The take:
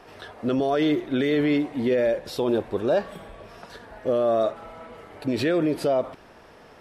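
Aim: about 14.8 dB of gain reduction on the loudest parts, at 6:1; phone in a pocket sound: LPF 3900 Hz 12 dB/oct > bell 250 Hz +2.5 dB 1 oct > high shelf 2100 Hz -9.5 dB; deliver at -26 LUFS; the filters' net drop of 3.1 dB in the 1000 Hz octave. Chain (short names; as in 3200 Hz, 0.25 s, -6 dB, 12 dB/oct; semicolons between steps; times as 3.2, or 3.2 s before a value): bell 1000 Hz -3.5 dB; compressor 6:1, threshold -36 dBFS; LPF 3900 Hz 12 dB/oct; bell 250 Hz +2.5 dB 1 oct; high shelf 2100 Hz -9.5 dB; gain +13 dB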